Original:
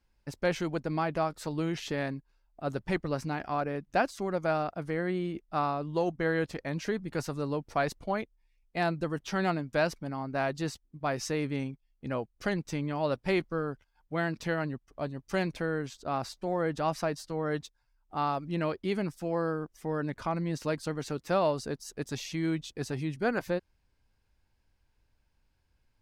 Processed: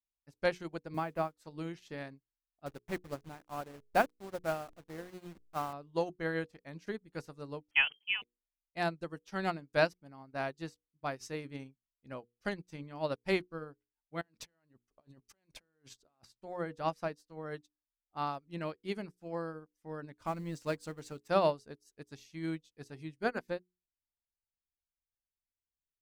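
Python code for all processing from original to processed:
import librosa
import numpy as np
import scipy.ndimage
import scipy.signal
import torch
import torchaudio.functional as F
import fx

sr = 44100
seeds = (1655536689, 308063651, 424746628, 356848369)

y = fx.chain(x, sr, fx.peak_eq(hz=6100.0, db=-14.5, octaves=0.97),
    fx.quant_dither(seeds[0], bits=10, dither='none'),
    fx.band_squash(depth_pct=40), at=(0.94, 1.36))
y = fx.chain(y, sr, fx.delta_hold(step_db=-33.5),
    fx.high_shelf(hz=3700.0, db=-8.0), at=(2.66, 5.73))
y = fx.chain(y, sr, fx.freq_invert(carrier_hz=3200),
    fx.sustainer(db_per_s=140.0), at=(7.71, 8.22))
y = fx.chain(y, sr, fx.bass_treble(bass_db=-3, treble_db=0),
    fx.over_compress(threshold_db=-43.0, ratio=-1.0), at=(14.21, 16.25))
y = fx.chain(y, sr, fx.law_mismatch(coded='mu'),
    fx.peak_eq(hz=7600.0, db=5.0, octaves=0.25), at=(20.2, 21.28))
y = fx.high_shelf(y, sr, hz=4100.0, db=5.0)
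y = fx.hum_notches(y, sr, base_hz=60, count=8)
y = fx.upward_expand(y, sr, threshold_db=-45.0, expansion=2.5)
y = y * 10.0 ** (1.0 / 20.0)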